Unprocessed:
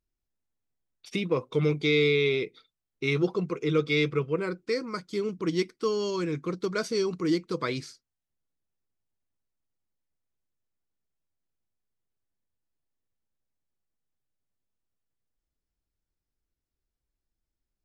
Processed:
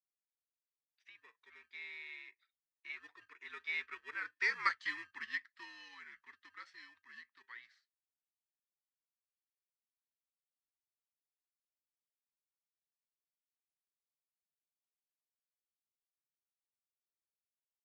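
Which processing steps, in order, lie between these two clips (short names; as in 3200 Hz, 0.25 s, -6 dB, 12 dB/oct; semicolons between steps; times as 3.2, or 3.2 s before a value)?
Doppler pass-by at 4.67, 20 m/s, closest 2.4 m; in parallel at -12 dB: sample-rate reducer 1500 Hz, jitter 0%; on the sum: ladder band-pass 2000 Hz, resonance 70%; frequency shift -80 Hz; gain +16.5 dB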